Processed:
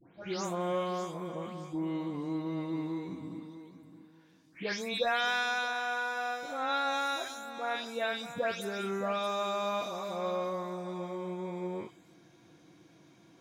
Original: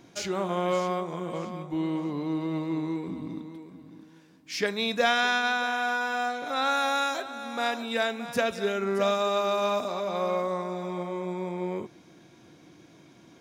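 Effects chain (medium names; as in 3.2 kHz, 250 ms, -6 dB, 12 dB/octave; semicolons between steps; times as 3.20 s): delay that grows with frequency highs late, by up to 287 ms; trim -5 dB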